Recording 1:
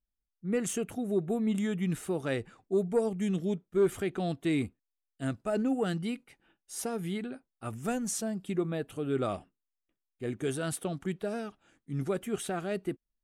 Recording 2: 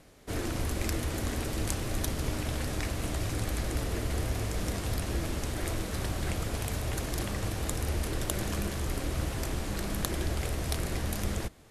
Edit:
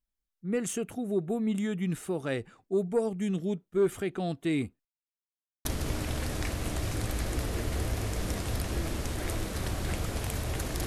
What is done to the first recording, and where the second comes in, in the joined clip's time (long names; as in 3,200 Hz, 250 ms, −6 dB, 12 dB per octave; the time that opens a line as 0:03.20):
recording 1
0:04.85–0:05.65: silence
0:05.65: continue with recording 2 from 0:02.03